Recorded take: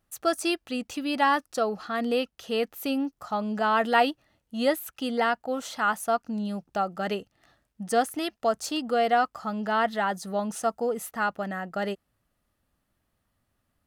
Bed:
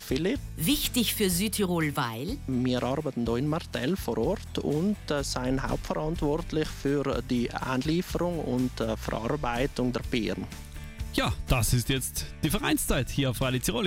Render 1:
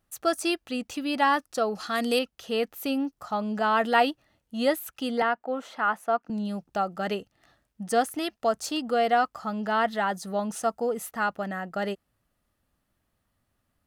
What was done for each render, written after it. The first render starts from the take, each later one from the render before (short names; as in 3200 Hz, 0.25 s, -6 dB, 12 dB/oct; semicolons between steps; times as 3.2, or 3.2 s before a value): 1.75–2.19 bell 8900 Hz +14 dB 2.4 oct; 5.22–6.3 three-band isolator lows -18 dB, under 190 Hz, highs -14 dB, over 2800 Hz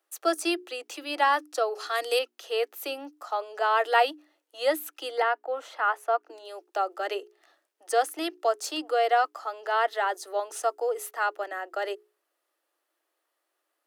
steep high-pass 310 Hz 96 dB/oct; notches 60/120/180/240/300/360/420 Hz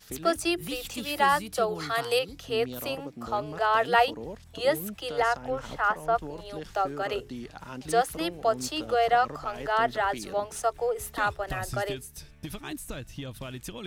add bed -11.5 dB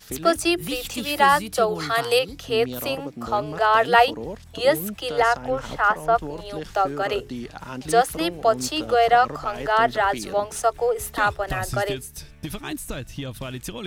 gain +6 dB